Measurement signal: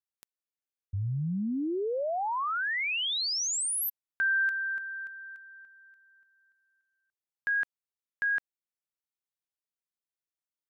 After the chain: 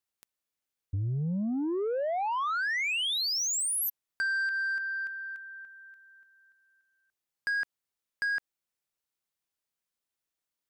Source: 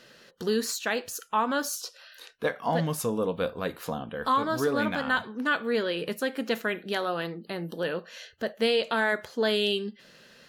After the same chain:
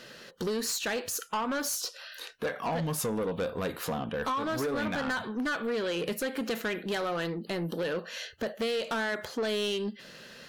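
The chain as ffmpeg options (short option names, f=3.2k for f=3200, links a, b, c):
-af "acompressor=threshold=-31dB:ratio=6:attack=38:release=220:knee=6:detection=peak,asoftclip=type=tanh:threshold=-31.5dB,volume=5.5dB"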